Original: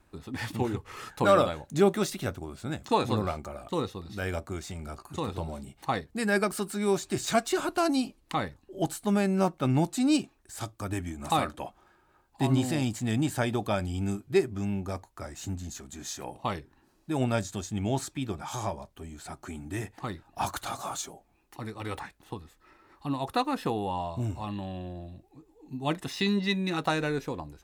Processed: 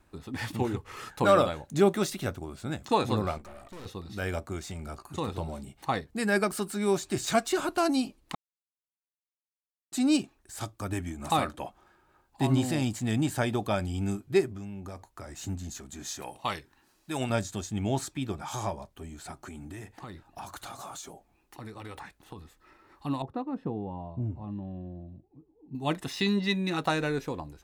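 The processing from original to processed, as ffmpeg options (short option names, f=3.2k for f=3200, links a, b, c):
-filter_complex "[0:a]asettb=1/sr,asplit=3[a][b][c];[a]atrim=end=3.384[d];[b]atrim=start=3.38:end=3.86,asetpts=PTS-STARTPTS,afade=t=in:d=0.004:c=qsin,afade=t=out:st=0.476:d=0.004:c=qsin,aeval=exprs='(tanh(141*val(0)+0.75)-tanh(0.75))/141':c=same[e];[c]atrim=start=3.856[f];[d][e]acrossfade=d=0.004:c1=hsin:c2=qsin[g];[g][f]acrossfade=d=0.004:c1=qsin:c2=hsin,asettb=1/sr,asplit=3[h][i][j];[h]atrim=end=14.514[k];[i]atrim=start=14.51:end=15.35,asetpts=PTS-STARTPTS,afade=t=in:d=0.004:c=qsin,afade=t=out:st=0.836:d=0.004:c=qsin,acompressor=threshold=-37dB:ratio=6:attack=3.2:release=140:knee=1:detection=peak[l];[j]atrim=start=15.346[m];[k][l]acrossfade=d=0.004:c1=hsin:c2=qsin[n];[n][m]acrossfade=d=0.004:c1=qsin:c2=hsin,asettb=1/sr,asplit=3[o][p][q];[o]atrim=end=16.224[r];[p]atrim=start=16.22:end=17.3,asetpts=PTS-STARTPTS,afade=t=in:d=0.004:c=qsin,afade=t=out:st=1.076:d=0.004:c=qsin,tiltshelf=f=930:g=-6[s];[q]atrim=start=17.296[t];[r][s]acrossfade=d=0.004:c1=hsin:c2=qsin[u];[u][t]acrossfade=d=0.004:c1=qsin:c2=hsin,asettb=1/sr,asplit=3[v][w][x];[v]atrim=end=19.314[y];[w]atrim=start=19.31:end=22.38,asetpts=PTS-STARTPTS,afade=t=in:d=0.004:c=qsin,afade=t=out:st=3.066:d=0.004:c=qsin,acompressor=threshold=-38dB:ratio=6:attack=3.2:release=140:knee=1:detection=peak[z];[x]atrim=start=22.376[aa];[y][z]acrossfade=d=0.004:c1=hsin:c2=qsin[ab];[ab][aa]acrossfade=d=0.004:c1=qsin:c2=hsin,asettb=1/sr,asplit=3[ac][ad][ae];[ac]atrim=end=23.224[af];[ad]atrim=start=23.22:end=25.75,asetpts=PTS-STARTPTS,afade=t=in:d=0.004:c=qsin,afade=t=out:st=2.526:d=0.004:c=qsin,bandpass=f=160:t=q:w=0.64[ag];[ae]atrim=start=25.746[ah];[af][ag]acrossfade=d=0.004:c1=hsin:c2=qsin[ai];[ai][ah]acrossfade=d=0.004:c1=qsin:c2=hsin,asplit=3[aj][ak][al];[aj]atrim=end=8.35,asetpts=PTS-STARTPTS,afade=t=out:st=8.346:d=0.004:c=hsin[am];[ak]atrim=start=8.35:end=9.92,asetpts=PTS-STARTPTS,volume=0[an];[al]atrim=start=9.92,asetpts=PTS-STARTPTS,afade=t=in:d=0.004:c=hsin[ao];[am][an][ao]concat=n=3:v=0:a=1"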